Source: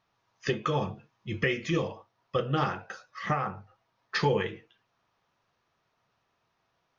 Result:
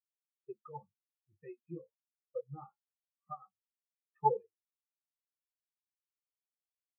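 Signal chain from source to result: rippled Chebyshev low-pass 3.6 kHz, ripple 6 dB; level-controlled noise filter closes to 310 Hz, open at -30.5 dBFS; spectral contrast expander 4:1; trim +2 dB

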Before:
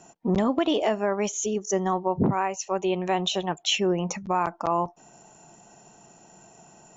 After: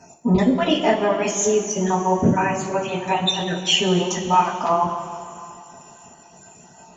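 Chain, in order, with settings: random holes in the spectrogram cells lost 30%; two-slope reverb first 0.2 s, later 2.7 s, from -18 dB, DRR -7.5 dB

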